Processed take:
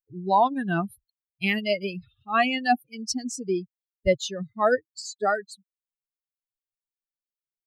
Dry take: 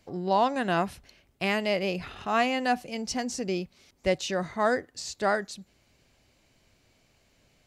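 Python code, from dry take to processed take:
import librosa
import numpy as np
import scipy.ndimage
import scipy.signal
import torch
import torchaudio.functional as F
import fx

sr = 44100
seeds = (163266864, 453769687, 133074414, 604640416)

y = fx.bin_expand(x, sr, power=3.0)
y = y * librosa.db_to_amplitude(8.0)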